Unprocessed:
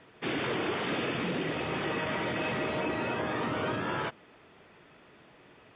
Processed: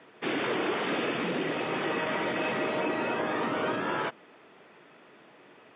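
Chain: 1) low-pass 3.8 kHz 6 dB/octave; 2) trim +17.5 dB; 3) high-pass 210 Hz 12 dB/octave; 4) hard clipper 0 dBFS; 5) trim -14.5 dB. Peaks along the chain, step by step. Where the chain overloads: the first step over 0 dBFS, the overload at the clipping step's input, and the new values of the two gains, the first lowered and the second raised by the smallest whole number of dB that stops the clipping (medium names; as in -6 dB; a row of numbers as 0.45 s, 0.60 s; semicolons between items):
-21.0 dBFS, -3.5 dBFS, -4.0 dBFS, -4.0 dBFS, -18.5 dBFS; nothing clips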